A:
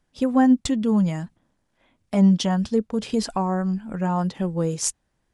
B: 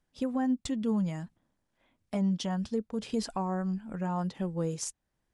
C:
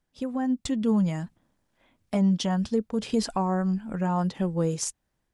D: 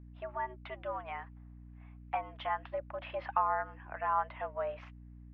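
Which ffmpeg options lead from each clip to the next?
-af "alimiter=limit=0.2:level=0:latency=1:release=370,volume=0.422"
-af "dynaudnorm=f=240:g=5:m=2"
-af "highpass=f=580:t=q:w=0.5412,highpass=f=580:t=q:w=1.307,lowpass=f=2500:t=q:w=0.5176,lowpass=f=2500:t=q:w=0.7071,lowpass=f=2500:t=q:w=1.932,afreqshift=120,aeval=exprs='val(0)+0.00316*(sin(2*PI*60*n/s)+sin(2*PI*2*60*n/s)/2+sin(2*PI*3*60*n/s)/3+sin(2*PI*4*60*n/s)/4+sin(2*PI*5*60*n/s)/5)':c=same"

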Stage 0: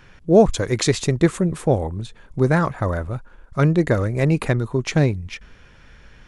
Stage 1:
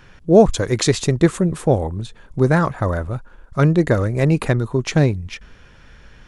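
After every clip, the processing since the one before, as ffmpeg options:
-af "equalizer=f=2200:w=3.9:g=-2.5,volume=1.26"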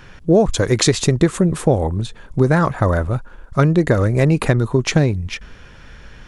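-af "acompressor=threshold=0.178:ratio=6,volume=1.78"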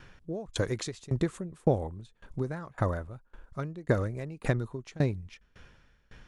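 -af "aeval=exprs='val(0)*pow(10,-24*if(lt(mod(1.8*n/s,1),2*abs(1.8)/1000),1-mod(1.8*n/s,1)/(2*abs(1.8)/1000),(mod(1.8*n/s,1)-2*abs(1.8)/1000)/(1-2*abs(1.8)/1000))/20)':c=same,volume=0.376"

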